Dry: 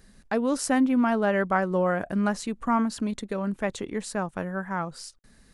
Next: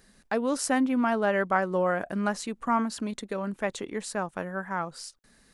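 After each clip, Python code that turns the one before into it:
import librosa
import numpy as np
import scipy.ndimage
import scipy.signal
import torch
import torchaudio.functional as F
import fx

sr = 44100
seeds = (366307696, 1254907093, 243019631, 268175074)

y = fx.low_shelf(x, sr, hz=180.0, db=-10.0)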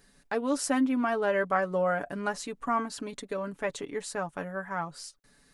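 y = x + 0.57 * np.pad(x, (int(7.0 * sr / 1000.0), 0))[:len(x)]
y = F.gain(torch.from_numpy(y), -3.0).numpy()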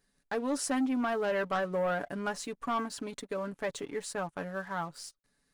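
y = fx.leveller(x, sr, passes=2)
y = F.gain(torch.from_numpy(y), -9.0).numpy()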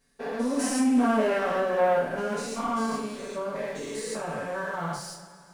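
y = fx.spec_steps(x, sr, hold_ms=200)
y = fx.rev_double_slope(y, sr, seeds[0], early_s=0.39, late_s=2.7, knee_db=-19, drr_db=-8.5)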